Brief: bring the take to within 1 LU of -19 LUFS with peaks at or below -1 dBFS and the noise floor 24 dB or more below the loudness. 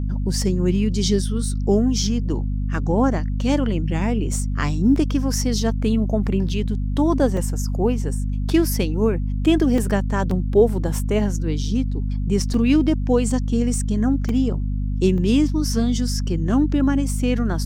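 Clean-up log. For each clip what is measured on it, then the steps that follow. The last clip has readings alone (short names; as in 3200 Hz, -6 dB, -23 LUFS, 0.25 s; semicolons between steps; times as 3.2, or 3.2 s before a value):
dropouts 8; longest dropout 2.6 ms; hum 50 Hz; harmonics up to 250 Hz; hum level -20 dBFS; loudness -21.0 LUFS; peak -4.0 dBFS; loudness target -19.0 LUFS
-> interpolate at 4.96/6.49/7.37/9.78/10.31/12.54/14.29/15.18, 2.6 ms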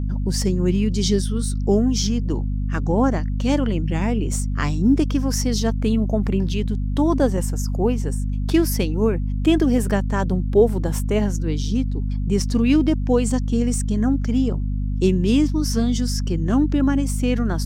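dropouts 0; hum 50 Hz; harmonics up to 250 Hz; hum level -20 dBFS
-> de-hum 50 Hz, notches 5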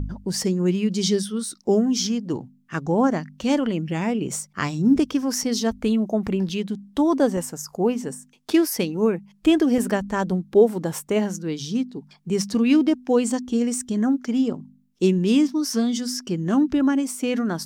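hum none; loudness -22.5 LUFS; peak -5.0 dBFS; loudness target -19.0 LUFS
-> gain +3.5 dB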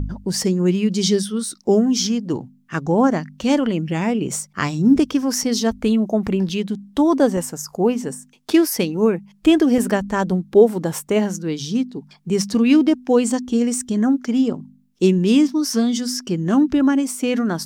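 loudness -19.0 LUFS; peak -1.5 dBFS; noise floor -54 dBFS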